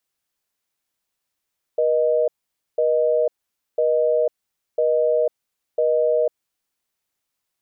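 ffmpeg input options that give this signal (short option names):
-f lavfi -i "aevalsrc='0.119*(sin(2*PI*480*t)+sin(2*PI*620*t))*clip(min(mod(t,1),0.5-mod(t,1))/0.005,0,1)':d=4.94:s=44100"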